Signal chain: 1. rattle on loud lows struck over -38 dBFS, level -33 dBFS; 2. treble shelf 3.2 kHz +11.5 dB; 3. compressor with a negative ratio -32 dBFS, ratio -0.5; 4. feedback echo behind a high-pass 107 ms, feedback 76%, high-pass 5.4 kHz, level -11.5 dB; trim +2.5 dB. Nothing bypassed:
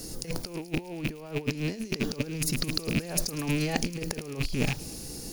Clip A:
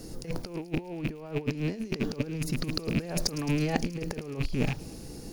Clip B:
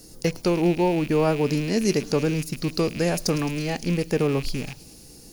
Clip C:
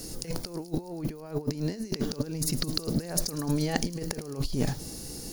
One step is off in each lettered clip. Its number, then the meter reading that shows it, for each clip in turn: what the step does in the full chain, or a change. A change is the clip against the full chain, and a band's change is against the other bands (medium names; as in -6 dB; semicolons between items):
2, 8 kHz band -7.0 dB; 3, crest factor change -8.5 dB; 1, 2 kHz band -7.5 dB